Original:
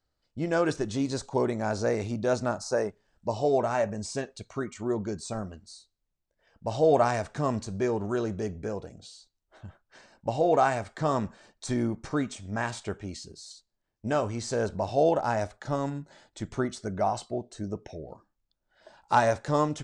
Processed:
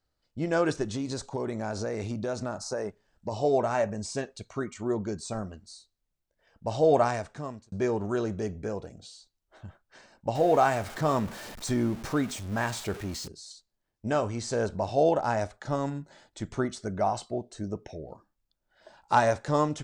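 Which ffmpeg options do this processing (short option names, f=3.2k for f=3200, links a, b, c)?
-filter_complex "[0:a]asettb=1/sr,asplit=3[a][b][c];[a]atrim=end=0.834[d];[b]atrim=start=0.83:end=3.32,asetpts=PTS-STARTPTS,afade=t=in:d=0.004:c=qsin,afade=t=out:st=2.486:d=0.004:c=qsin,acompressor=threshold=-27dB:ratio=6:attack=3.2:release=140:knee=1:detection=peak[e];[c]atrim=start=3.316[f];[d][e]acrossfade=d=0.004:c1=hsin:c2=qsin[g];[g][f]acrossfade=d=0.004:c1=qsin:c2=hsin,asettb=1/sr,asplit=3[h][i][j];[h]atrim=end=10.354[k];[i]atrim=start=10.35:end=13.28,asetpts=PTS-STARTPTS,afade=t=in:d=0.004:c=qsin,afade=t=out:st=2.926:d=0.004:c=qsin,aeval=exprs='val(0)+0.5*0.0133*sgn(val(0))':c=same[l];[j]atrim=start=13.276[m];[k][l]acrossfade=d=0.004:c1=hsin:c2=qsin[n];[n][m]acrossfade=d=0.004:c1=qsin:c2=hsin,asplit=2[o][p];[o]atrim=end=7.72,asetpts=PTS-STARTPTS,afade=t=out:st=6.97:d=0.75[q];[p]atrim=start=7.72,asetpts=PTS-STARTPTS,afade=t=in:d=0.004:c=hsin[r];[q][r]concat=n=2:v=0:a=1"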